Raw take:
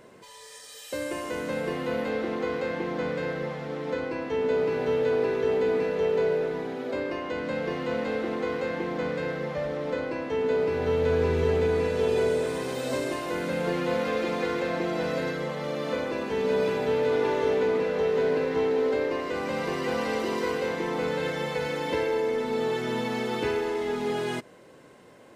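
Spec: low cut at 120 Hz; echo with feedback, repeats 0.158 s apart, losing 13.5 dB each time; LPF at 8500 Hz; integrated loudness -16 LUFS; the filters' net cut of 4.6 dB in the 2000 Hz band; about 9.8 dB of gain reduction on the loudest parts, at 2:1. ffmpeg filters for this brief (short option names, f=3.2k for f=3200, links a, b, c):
-af "highpass=120,lowpass=8.5k,equalizer=f=2k:t=o:g=-6,acompressor=threshold=-40dB:ratio=2,aecho=1:1:158|316:0.211|0.0444,volume=21dB"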